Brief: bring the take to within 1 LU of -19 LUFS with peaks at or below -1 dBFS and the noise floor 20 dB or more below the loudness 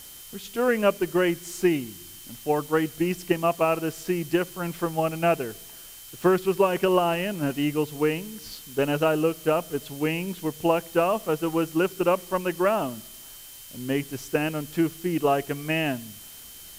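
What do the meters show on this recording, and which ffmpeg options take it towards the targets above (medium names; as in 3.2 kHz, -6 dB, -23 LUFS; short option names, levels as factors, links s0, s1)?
steady tone 3.1 kHz; tone level -52 dBFS; noise floor -44 dBFS; noise floor target -46 dBFS; loudness -25.5 LUFS; peak level -8.5 dBFS; loudness target -19.0 LUFS
-> -af "bandreject=f=3100:w=30"
-af "afftdn=nr=6:nf=-44"
-af "volume=2.11"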